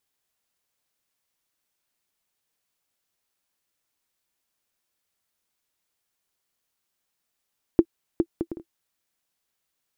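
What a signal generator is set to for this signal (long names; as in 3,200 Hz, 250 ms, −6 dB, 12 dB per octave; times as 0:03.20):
bouncing ball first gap 0.41 s, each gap 0.51, 335 Hz, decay 61 ms −4 dBFS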